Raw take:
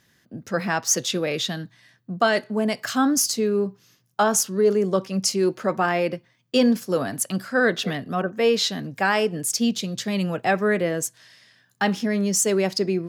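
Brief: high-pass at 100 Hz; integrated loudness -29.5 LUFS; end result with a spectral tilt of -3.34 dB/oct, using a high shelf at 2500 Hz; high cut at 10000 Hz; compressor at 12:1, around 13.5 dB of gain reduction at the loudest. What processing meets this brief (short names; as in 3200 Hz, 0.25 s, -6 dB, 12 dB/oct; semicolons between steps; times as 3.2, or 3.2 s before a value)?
HPF 100 Hz; LPF 10000 Hz; high shelf 2500 Hz +3.5 dB; compressor 12:1, threshold -27 dBFS; gain +2 dB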